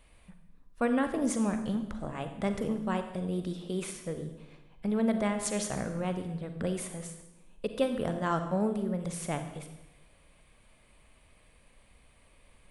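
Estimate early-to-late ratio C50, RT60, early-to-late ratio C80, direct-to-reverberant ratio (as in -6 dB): 8.0 dB, 0.95 s, 10.5 dB, 7.0 dB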